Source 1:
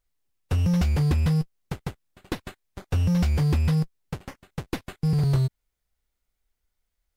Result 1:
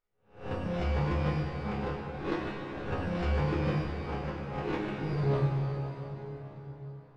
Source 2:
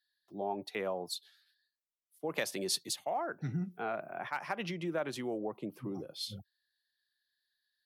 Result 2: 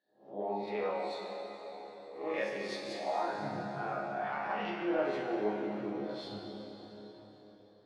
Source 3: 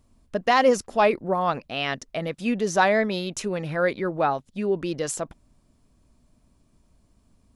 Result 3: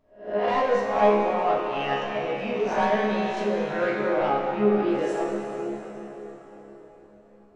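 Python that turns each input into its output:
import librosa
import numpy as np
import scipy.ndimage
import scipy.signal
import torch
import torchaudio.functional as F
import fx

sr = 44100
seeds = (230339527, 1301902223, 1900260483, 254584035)

p1 = fx.spec_swells(x, sr, rise_s=0.42)
p2 = fx.bass_treble(p1, sr, bass_db=-12, treble_db=-4)
p3 = fx.hum_notches(p2, sr, base_hz=50, count=2)
p4 = fx.rider(p3, sr, range_db=4, speed_s=2.0)
p5 = p3 + F.gain(torch.from_numpy(p4), -1.0).numpy()
p6 = 10.0 ** (-14.5 / 20.0) * np.tanh(p5 / 10.0 ** (-14.5 / 20.0))
p7 = fx.spacing_loss(p6, sr, db_at_10k=27)
p8 = fx.resonator_bank(p7, sr, root=37, chord='fifth', decay_s=0.41)
p9 = fx.rev_plate(p8, sr, seeds[0], rt60_s=4.7, hf_ratio=0.8, predelay_ms=0, drr_db=0.0)
y = F.gain(torch.from_numpy(p9), 8.0).numpy()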